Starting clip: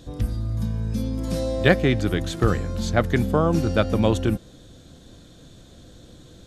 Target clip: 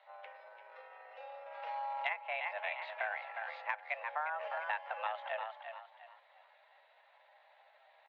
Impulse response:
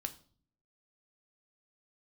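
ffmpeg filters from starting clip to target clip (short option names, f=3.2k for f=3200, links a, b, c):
-filter_complex "[0:a]highpass=f=300:t=q:w=0.5412,highpass=f=300:t=q:w=1.307,lowpass=f=2.3k:t=q:w=0.5176,lowpass=f=2.3k:t=q:w=0.7071,lowpass=f=2.3k:t=q:w=1.932,afreqshift=300,aderivative,asplit=2[a][b];[b]asplit=4[c][d][e][f];[c]adelay=279,afreqshift=32,volume=-9.5dB[g];[d]adelay=558,afreqshift=64,volume=-19.4dB[h];[e]adelay=837,afreqshift=96,volume=-29.3dB[i];[f]adelay=1116,afreqshift=128,volume=-39.2dB[j];[g][h][i][j]amix=inputs=4:normalize=0[k];[a][k]amix=inputs=2:normalize=0,acompressor=threshold=-40dB:ratio=10,atempo=0.8,volume=7dB"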